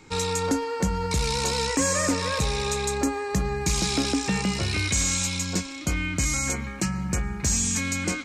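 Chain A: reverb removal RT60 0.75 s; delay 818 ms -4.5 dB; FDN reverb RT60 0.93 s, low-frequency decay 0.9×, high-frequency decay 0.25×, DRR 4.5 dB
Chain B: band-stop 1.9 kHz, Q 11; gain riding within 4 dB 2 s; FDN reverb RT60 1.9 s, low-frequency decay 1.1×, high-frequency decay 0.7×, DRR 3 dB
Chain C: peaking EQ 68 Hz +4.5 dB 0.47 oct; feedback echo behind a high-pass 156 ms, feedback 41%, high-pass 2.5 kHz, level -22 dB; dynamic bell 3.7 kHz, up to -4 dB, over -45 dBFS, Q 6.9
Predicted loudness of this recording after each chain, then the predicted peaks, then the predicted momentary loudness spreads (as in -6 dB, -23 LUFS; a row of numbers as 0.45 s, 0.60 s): -24.0 LUFS, -22.5 LUFS, -25.0 LUFS; -10.0 dBFS, -8.5 dBFS, -13.5 dBFS; 4 LU, 5 LU, 5 LU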